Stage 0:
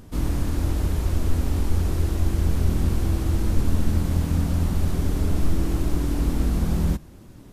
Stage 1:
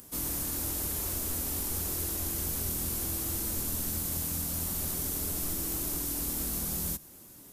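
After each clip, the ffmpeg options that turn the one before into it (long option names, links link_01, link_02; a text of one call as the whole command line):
ffmpeg -i in.wav -filter_complex "[0:a]acrossover=split=130|3000[link_01][link_02][link_03];[link_02]acompressor=threshold=-29dB:ratio=6[link_04];[link_01][link_04][link_03]amix=inputs=3:normalize=0,aemphasis=mode=production:type=bsi,acrossover=split=5600[link_05][link_06];[link_06]acontrast=33[link_07];[link_05][link_07]amix=inputs=2:normalize=0,volume=-5.5dB" out.wav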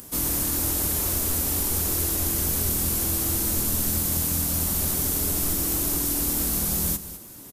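ffmpeg -i in.wav -af "aecho=1:1:204:0.211,volume=8dB" out.wav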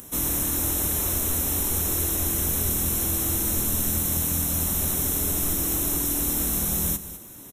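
ffmpeg -i in.wav -af "asuperstop=centerf=4700:order=8:qfactor=4.4" out.wav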